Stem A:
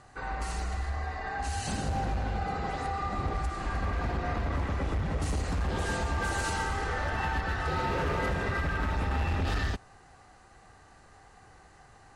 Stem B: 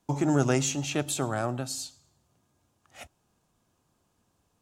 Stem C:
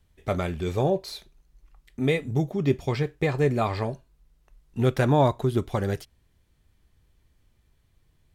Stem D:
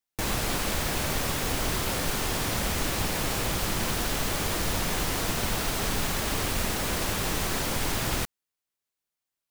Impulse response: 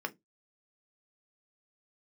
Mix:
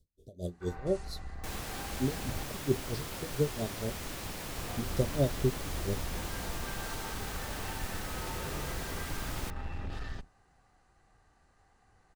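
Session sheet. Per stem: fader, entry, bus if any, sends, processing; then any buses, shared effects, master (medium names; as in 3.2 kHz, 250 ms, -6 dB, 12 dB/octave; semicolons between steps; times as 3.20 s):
-12.5 dB, 0.45 s, muted 2.43–4.57 s, no send, octave divider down 2 oct, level +3 dB
mute
-4.0 dB, 0.00 s, send -12 dB, inverse Chebyshev band-stop 990–2300 Hz, stop band 50 dB; logarithmic tremolo 4.4 Hz, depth 28 dB
-12.0 dB, 1.25 s, no send, none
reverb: on, RT60 0.15 s, pre-delay 3 ms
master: none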